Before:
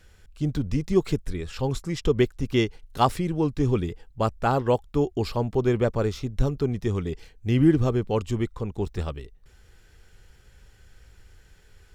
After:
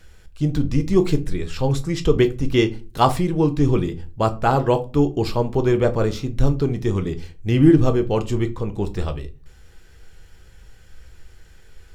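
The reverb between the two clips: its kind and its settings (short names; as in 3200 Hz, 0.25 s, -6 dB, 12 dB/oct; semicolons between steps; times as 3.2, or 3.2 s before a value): shoebox room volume 140 m³, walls furnished, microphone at 0.63 m; gain +4 dB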